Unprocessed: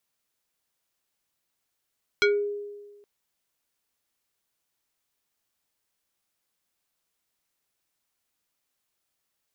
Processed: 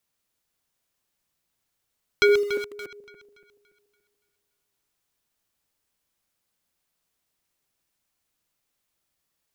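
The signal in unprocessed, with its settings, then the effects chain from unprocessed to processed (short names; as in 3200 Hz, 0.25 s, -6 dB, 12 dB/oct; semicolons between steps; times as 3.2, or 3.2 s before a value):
FM tone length 0.82 s, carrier 410 Hz, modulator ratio 4.51, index 2, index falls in 0.27 s exponential, decay 1.36 s, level -16 dB
regenerating reverse delay 0.143 s, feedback 64%, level -8 dB; low shelf 230 Hz +6 dB; in parallel at -8 dB: requantised 6-bit, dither none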